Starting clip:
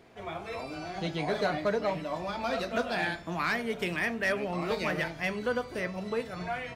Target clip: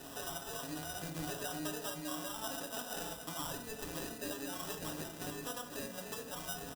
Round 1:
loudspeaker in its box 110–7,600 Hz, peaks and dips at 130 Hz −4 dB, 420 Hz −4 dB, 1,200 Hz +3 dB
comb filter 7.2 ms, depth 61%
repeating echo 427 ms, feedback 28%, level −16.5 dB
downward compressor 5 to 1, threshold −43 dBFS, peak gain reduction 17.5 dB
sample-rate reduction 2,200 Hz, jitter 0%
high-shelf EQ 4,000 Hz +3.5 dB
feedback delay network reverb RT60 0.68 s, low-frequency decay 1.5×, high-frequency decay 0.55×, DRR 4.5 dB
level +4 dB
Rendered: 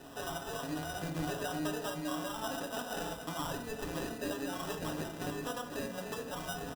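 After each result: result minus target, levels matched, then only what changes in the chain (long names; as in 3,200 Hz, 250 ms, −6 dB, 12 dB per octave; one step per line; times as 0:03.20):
downward compressor: peak gain reduction −5.5 dB; 8,000 Hz band −5.0 dB
change: downward compressor 5 to 1, threshold −50 dBFS, peak gain reduction 23 dB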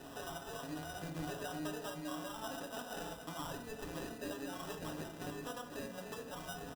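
8,000 Hz band −5.0 dB
change: high-shelf EQ 4,000 Hz +13.5 dB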